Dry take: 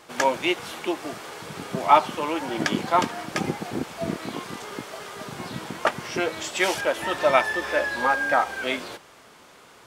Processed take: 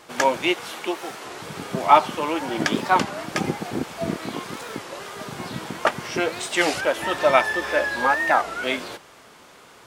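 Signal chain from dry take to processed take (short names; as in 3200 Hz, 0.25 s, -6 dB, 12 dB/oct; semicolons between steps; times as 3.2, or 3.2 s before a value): 0.54–1.27 low shelf 190 Hz -10 dB; record warp 33 1/3 rpm, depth 250 cents; gain +2 dB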